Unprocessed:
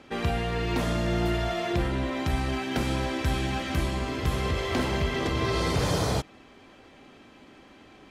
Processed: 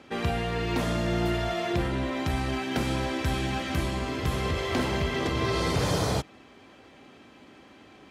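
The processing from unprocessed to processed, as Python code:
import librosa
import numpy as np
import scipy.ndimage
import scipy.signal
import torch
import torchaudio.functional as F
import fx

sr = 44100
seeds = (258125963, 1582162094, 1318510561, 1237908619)

y = scipy.signal.sosfilt(scipy.signal.butter(2, 60.0, 'highpass', fs=sr, output='sos'), x)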